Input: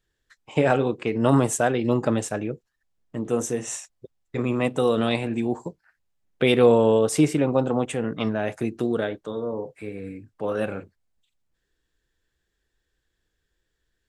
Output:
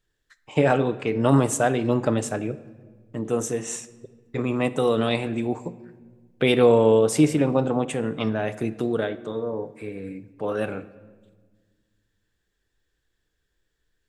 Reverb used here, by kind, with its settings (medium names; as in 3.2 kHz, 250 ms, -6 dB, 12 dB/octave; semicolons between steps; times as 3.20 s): simulated room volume 1400 m³, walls mixed, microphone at 0.37 m